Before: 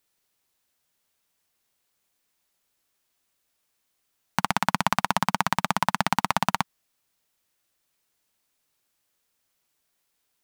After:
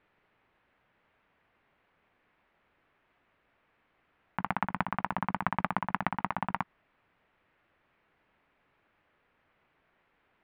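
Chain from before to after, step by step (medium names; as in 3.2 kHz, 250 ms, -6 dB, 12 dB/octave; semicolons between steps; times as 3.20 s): low-pass 2.3 kHz 24 dB/octave; compressor with a negative ratio -30 dBFS, ratio -0.5; trim +2.5 dB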